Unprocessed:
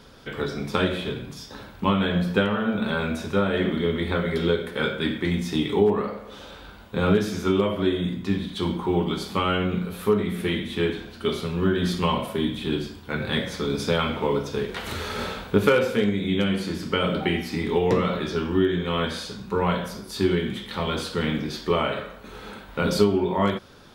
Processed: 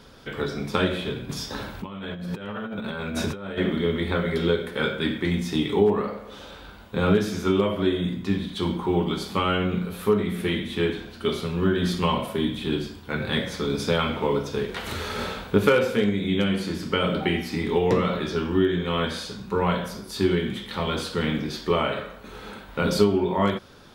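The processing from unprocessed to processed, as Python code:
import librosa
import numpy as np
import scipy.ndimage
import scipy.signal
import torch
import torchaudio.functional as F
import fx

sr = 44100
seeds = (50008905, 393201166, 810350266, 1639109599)

y = fx.over_compress(x, sr, threshold_db=-32.0, ratio=-1.0, at=(1.29, 3.58))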